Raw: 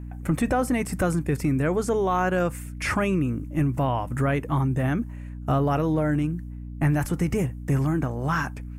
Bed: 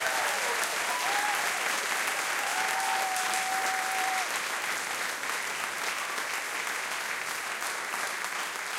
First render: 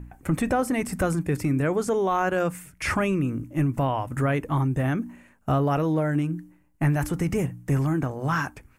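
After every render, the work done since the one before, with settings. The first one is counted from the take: de-hum 60 Hz, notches 5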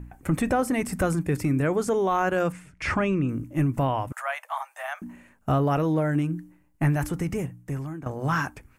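2.52–3.29 air absorption 89 m; 4.12–5.02 steep high-pass 630 Hz 72 dB/oct; 6.83–8.06 fade out, to -14 dB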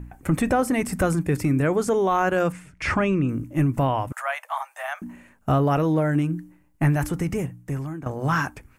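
gain +2.5 dB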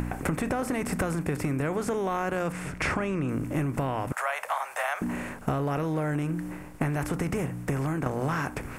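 per-bin compression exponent 0.6; compressor 10:1, threshold -25 dBFS, peak gain reduction 12 dB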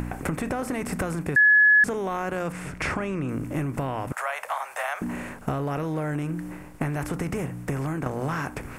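1.36–1.84 bleep 1700 Hz -13 dBFS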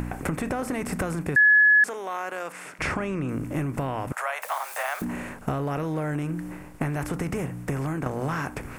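1.61–2.79 Bessel high-pass 620 Hz; 4.42–5.05 switching spikes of -33 dBFS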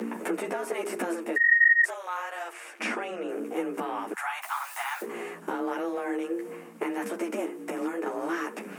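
frequency shift +170 Hz; ensemble effect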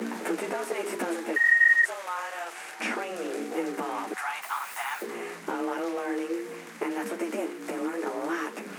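add bed -15 dB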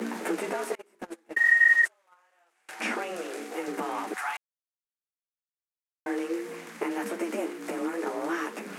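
0.75–2.69 gate -28 dBFS, range -31 dB; 3.21–3.68 low shelf 340 Hz -11 dB; 4.37–6.06 mute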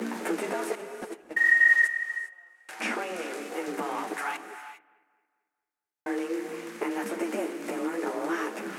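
analogue delay 0.223 s, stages 4096, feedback 43%, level -22 dB; non-linear reverb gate 0.43 s rising, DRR 9.5 dB

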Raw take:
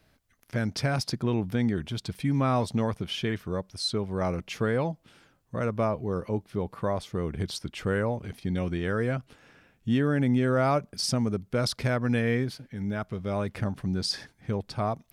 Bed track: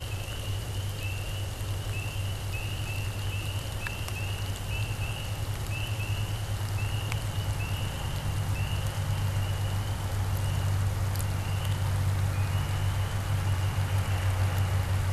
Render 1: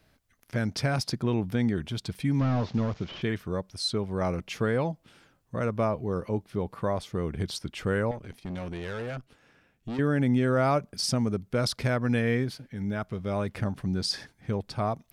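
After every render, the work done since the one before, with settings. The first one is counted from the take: 2.39–3.22 delta modulation 32 kbps, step -46 dBFS; 8.11–9.99 tube stage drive 31 dB, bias 0.8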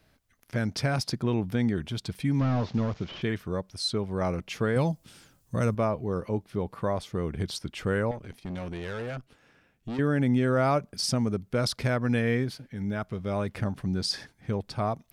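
4.76–5.75 tone controls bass +6 dB, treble +13 dB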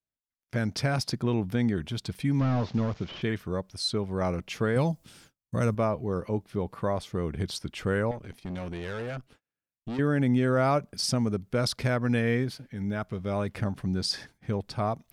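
gate -55 dBFS, range -34 dB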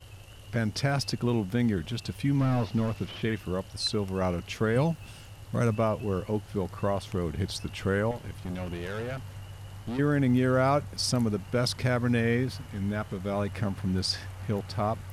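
add bed track -13.5 dB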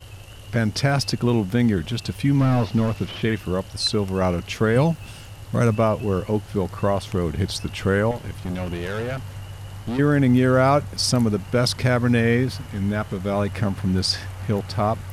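gain +7 dB

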